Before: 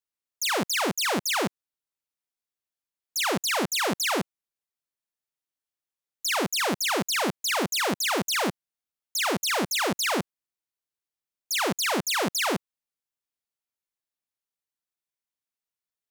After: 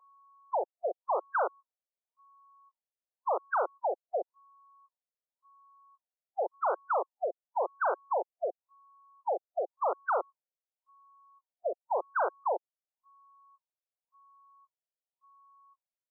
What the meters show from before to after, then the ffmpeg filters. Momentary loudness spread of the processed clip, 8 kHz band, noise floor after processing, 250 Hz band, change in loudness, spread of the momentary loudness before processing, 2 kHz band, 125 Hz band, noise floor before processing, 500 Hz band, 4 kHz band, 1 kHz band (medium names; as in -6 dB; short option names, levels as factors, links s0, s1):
7 LU, under -40 dB, under -85 dBFS, -24.0 dB, -7.5 dB, 6 LU, -13.5 dB, under -40 dB, under -85 dBFS, -1.5 dB, under -40 dB, -1.5 dB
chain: -af "aeval=exprs='val(0)+0.00126*sin(2*PI*940*n/s)':c=same,highpass=f=310:t=q:w=0.5412,highpass=f=310:t=q:w=1.307,lowpass=f=2100:t=q:w=0.5176,lowpass=f=2100:t=q:w=0.7071,lowpass=f=2100:t=q:w=1.932,afreqshift=170,afftfilt=real='re*lt(b*sr/1024,710*pow(1600/710,0.5+0.5*sin(2*PI*0.92*pts/sr)))':imag='im*lt(b*sr/1024,710*pow(1600/710,0.5+0.5*sin(2*PI*0.92*pts/sr)))':win_size=1024:overlap=0.75"